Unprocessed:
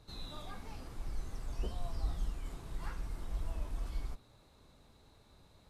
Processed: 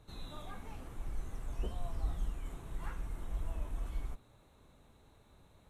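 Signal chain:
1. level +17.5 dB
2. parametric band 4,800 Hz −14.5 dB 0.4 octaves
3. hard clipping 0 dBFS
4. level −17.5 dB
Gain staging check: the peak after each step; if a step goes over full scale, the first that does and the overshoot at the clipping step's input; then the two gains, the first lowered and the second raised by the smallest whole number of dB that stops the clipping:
−6.0, −6.0, −6.0, −23.5 dBFS
no step passes full scale

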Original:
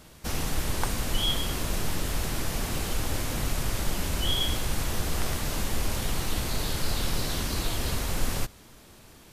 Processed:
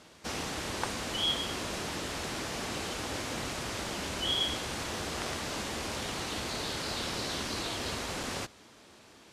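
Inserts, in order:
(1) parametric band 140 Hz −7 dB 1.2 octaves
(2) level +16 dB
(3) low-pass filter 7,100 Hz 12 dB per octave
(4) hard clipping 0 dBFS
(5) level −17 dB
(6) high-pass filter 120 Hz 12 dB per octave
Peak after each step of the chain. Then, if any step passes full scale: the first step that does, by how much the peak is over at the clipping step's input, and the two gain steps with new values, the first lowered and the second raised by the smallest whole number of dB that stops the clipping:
−11.5, +4.5, +4.0, 0.0, −17.0, −17.5 dBFS
step 2, 4.0 dB
step 2 +12 dB, step 5 −13 dB

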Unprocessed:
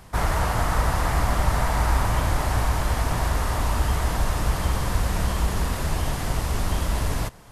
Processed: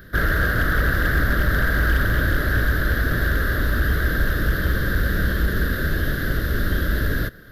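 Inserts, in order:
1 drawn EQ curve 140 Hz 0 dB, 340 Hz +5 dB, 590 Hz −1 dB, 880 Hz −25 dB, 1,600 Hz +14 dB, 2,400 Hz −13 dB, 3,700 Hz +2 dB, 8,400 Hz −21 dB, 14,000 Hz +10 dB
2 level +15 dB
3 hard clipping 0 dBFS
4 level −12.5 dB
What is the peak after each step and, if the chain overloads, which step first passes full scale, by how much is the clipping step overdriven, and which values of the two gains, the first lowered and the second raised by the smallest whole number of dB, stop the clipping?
−8.0, +7.0, 0.0, −12.5 dBFS
step 2, 7.0 dB
step 2 +8 dB, step 4 −5.5 dB

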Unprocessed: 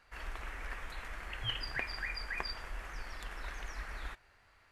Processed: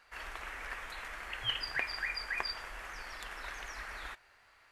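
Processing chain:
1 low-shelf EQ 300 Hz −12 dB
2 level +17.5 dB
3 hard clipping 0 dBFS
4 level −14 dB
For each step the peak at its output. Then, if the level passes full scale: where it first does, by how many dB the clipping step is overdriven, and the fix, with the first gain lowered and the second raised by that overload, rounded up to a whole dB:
−20.5, −3.0, −3.0, −17.0 dBFS
no step passes full scale

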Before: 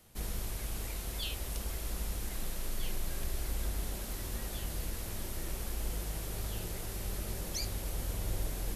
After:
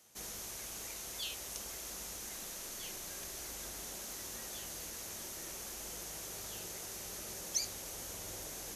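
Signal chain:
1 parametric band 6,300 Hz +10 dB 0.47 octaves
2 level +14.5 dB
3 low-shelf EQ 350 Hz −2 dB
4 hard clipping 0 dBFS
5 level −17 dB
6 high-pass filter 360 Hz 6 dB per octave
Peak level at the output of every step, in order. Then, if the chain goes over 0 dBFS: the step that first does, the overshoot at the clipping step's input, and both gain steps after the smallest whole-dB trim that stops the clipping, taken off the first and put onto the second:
−17.5, −3.0, −3.0, −3.0, −20.0, −20.5 dBFS
no step passes full scale

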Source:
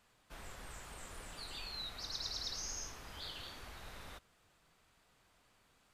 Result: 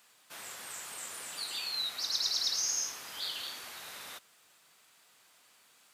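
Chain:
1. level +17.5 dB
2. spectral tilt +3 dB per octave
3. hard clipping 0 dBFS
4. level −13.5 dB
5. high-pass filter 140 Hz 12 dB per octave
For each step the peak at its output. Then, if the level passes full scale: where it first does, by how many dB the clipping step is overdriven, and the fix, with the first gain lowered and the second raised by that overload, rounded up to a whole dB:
−11.0, −4.5, −4.5, −18.0, −18.0 dBFS
no step passes full scale

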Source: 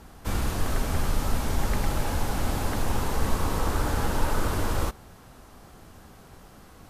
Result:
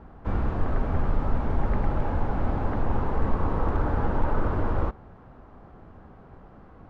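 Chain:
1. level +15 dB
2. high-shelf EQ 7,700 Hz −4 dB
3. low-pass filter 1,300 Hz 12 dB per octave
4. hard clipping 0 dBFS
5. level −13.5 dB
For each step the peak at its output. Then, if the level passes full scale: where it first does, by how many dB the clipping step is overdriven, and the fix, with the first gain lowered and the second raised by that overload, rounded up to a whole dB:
+4.5, +4.5, +4.0, 0.0, −13.5 dBFS
step 1, 4.0 dB
step 1 +11 dB, step 5 −9.5 dB

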